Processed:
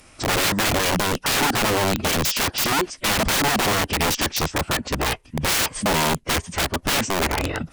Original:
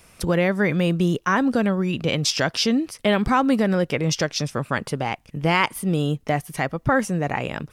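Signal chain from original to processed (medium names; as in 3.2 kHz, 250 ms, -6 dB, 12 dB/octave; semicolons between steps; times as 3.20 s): formant-preserving pitch shift -11 st; integer overflow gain 20 dB; warped record 33 1/3 rpm, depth 100 cents; trim +4.5 dB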